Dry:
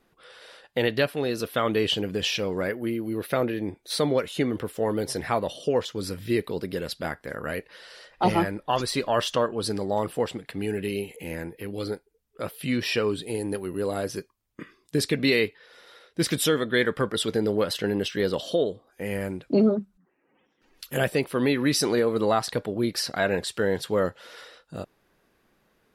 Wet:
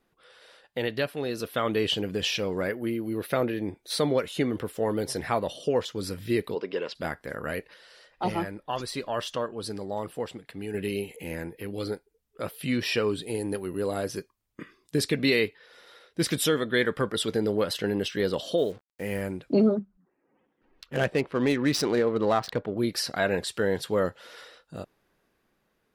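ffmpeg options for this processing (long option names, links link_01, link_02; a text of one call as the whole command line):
ffmpeg -i in.wav -filter_complex "[0:a]asplit=3[link_01][link_02][link_03];[link_01]afade=type=out:start_time=6.54:duration=0.02[link_04];[link_02]highpass=310,equalizer=frequency=430:width_type=q:width=4:gain=5,equalizer=frequency=1000:width_type=q:width=4:gain=9,equalizer=frequency=2800:width_type=q:width=4:gain=6,equalizer=frequency=4200:width_type=q:width=4:gain=-8,lowpass=frequency=5400:width=0.5412,lowpass=frequency=5400:width=1.3066,afade=type=in:start_time=6.54:duration=0.02,afade=type=out:start_time=6.94:duration=0.02[link_05];[link_03]afade=type=in:start_time=6.94:duration=0.02[link_06];[link_04][link_05][link_06]amix=inputs=3:normalize=0,asplit=3[link_07][link_08][link_09];[link_07]afade=type=out:start_time=18.57:duration=0.02[link_10];[link_08]acrusher=bits=7:mix=0:aa=0.5,afade=type=in:start_time=18.57:duration=0.02,afade=type=out:start_time=19.2:duration=0.02[link_11];[link_09]afade=type=in:start_time=19.2:duration=0.02[link_12];[link_10][link_11][link_12]amix=inputs=3:normalize=0,asettb=1/sr,asplit=3[link_13][link_14][link_15];[link_13]atrim=end=19.794[link_16];[link_14]atrim=start=19.79:end=22.77,asetpts=PTS-STARTPTS,afade=type=in:duration=0.004:curve=qsin,afade=type=out:start_time=2.976:duration=0.004:curve=qsin,adynamicsmooth=sensitivity=4:basefreq=1900[link_17];[link_15]atrim=start=22.766[link_18];[link_16][link_17]acrossfade=duration=0.004:curve1=hsin:curve2=qsin[link_19];[link_19][link_18]acrossfade=duration=0.004:curve1=qsin:curve2=hsin,asplit=3[link_20][link_21][link_22];[link_20]atrim=end=7.742[link_23];[link_21]atrim=start=7.738:end=10.742,asetpts=PTS-STARTPTS,volume=-5.5dB[link_24];[link_22]atrim=start=10.738[link_25];[link_23][link_24]acrossfade=duration=0.004:curve1=hsin:curve2=hsin[link_26];[link_26][link_25]acrossfade=duration=0.004:curve1=hsin:curve2=hsin,dynaudnorm=framelen=310:gausssize=9:maxgain=5dB,volume=-6dB" out.wav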